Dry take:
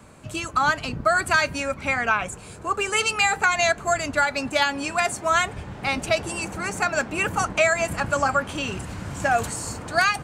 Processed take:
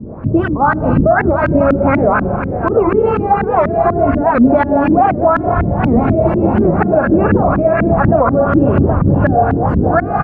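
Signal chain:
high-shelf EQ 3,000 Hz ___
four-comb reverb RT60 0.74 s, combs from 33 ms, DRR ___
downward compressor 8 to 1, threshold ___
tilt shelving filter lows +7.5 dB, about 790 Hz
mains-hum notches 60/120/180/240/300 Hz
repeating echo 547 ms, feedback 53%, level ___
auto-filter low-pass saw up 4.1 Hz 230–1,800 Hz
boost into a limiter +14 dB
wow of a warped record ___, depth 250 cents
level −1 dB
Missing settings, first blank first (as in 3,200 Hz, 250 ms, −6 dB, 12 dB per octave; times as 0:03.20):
−12 dB, 3 dB, −23 dBFS, −11.5 dB, 78 rpm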